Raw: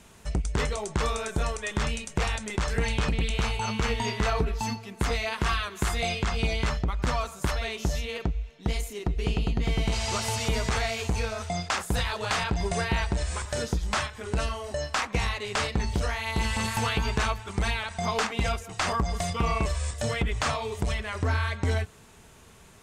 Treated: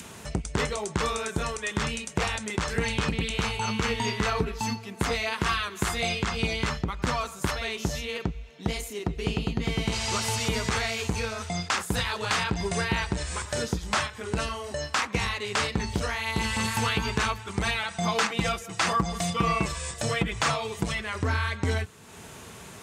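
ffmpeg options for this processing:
ffmpeg -i in.wav -filter_complex "[0:a]asettb=1/sr,asplit=3[link_01][link_02][link_03];[link_01]atrim=end=17.664[link_04];[link_02]atrim=start=17.66:end=21.04,asetpts=PTS-STARTPTS,afade=type=in:duration=0.004:curve=qsin,afade=type=out:start_time=3.376:duration=0.004:curve=qsin,aecho=1:1:6:0.54,atrim=end_sample=149058[link_05];[link_03]atrim=start=21.036[link_06];[link_04][link_05]acrossfade=duration=0.004:curve1=hsin:curve2=qsin[link_07];[link_07][link_06]acrossfade=duration=0.004:curve1=qsin:curve2=hsin,highpass=91,adynamicequalizer=threshold=0.00447:dfrequency=660:dqfactor=2.5:tfrequency=660:tqfactor=2.5:attack=5:release=100:ratio=0.375:range=3:mode=cutabove:tftype=bell,acompressor=mode=upward:threshold=-37dB:ratio=2.5,volume=2dB" out.wav

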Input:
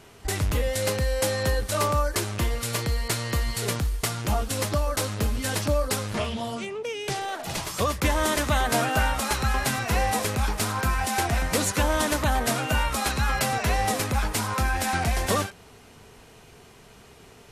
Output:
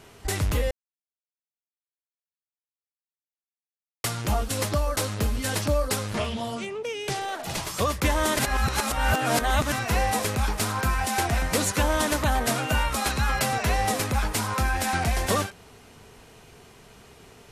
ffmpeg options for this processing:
ffmpeg -i in.wav -filter_complex "[0:a]asplit=5[link_01][link_02][link_03][link_04][link_05];[link_01]atrim=end=0.71,asetpts=PTS-STARTPTS,afade=type=out:start_time=0.706:duration=0.004:curve=hsin[link_06];[link_02]atrim=start=0.71:end=4.04,asetpts=PTS-STARTPTS,volume=0[link_07];[link_03]atrim=start=4.04:end=8.392,asetpts=PTS-STARTPTS,afade=type=in:duration=0.004:curve=hsin[link_08];[link_04]atrim=start=8.388:end=9.722,asetpts=PTS-STARTPTS,areverse[link_09];[link_05]atrim=start=9.718[link_10];[link_06][link_07][link_08]concat=n=3:v=0:a=1[link_11];[link_11][link_09]acrossfade=duration=0.004:curve1=hsin:curve2=hsin[link_12];[link_12][link_10]acrossfade=duration=0.004:curve1=hsin:curve2=hsin" out.wav

